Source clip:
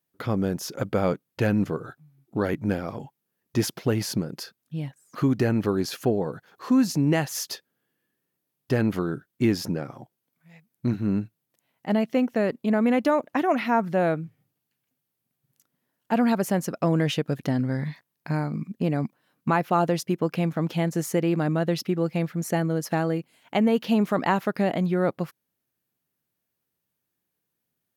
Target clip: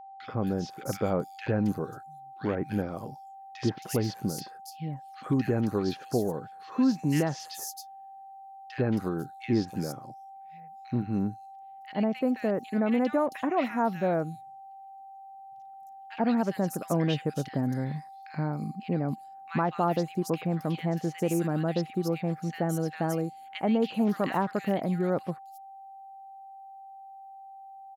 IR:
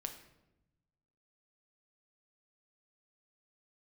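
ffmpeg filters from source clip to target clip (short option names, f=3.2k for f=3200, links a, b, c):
-filter_complex "[0:a]acrossover=split=1700|5300[a][b][c];[a]adelay=80[d];[c]adelay=270[e];[d][b][e]amix=inputs=3:normalize=0,aeval=exprs='val(0)+0.01*sin(2*PI*780*n/s)':c=same,volume=-4dB"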